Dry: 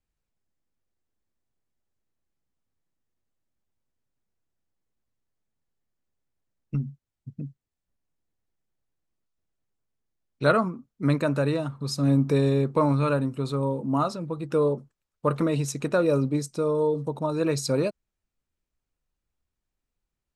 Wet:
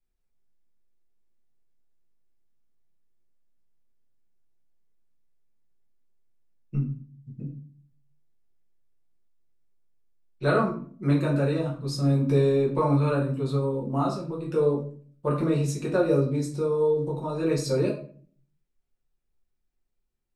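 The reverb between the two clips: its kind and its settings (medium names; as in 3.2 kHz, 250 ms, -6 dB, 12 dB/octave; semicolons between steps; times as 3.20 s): simulated room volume 40 m³, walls mixed, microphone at 1 m; trim -8 dB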